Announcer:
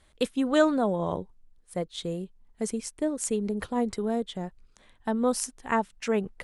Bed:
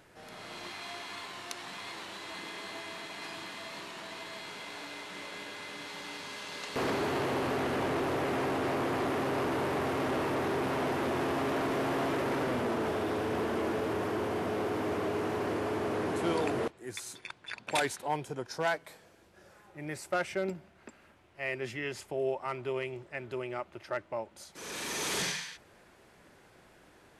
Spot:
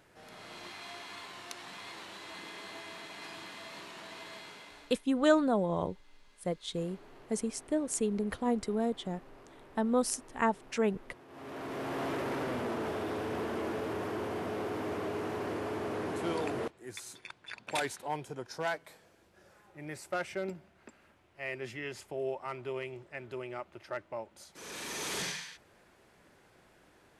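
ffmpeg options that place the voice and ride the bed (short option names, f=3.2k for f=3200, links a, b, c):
-filter_complex "[0:a]adelay=4700,volume=-3dB[a];[1:a]volume=17.5dB,afade=t=out:st=4.33:d=0.72:silence=0.0891251,afade=t=in:st=11.28:d=0.8:silence=0.0891251[b];[a][b]amix=inputs=2:normalize=0"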